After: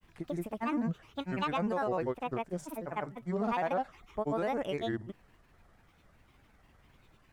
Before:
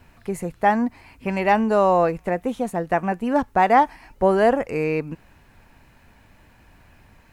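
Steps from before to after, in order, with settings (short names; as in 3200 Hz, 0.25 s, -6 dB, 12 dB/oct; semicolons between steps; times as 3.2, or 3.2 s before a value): grains, pitch spread up and down by 7 st; limiter -14 dBFS, peak gain reduction 8 dB; gain -9 dB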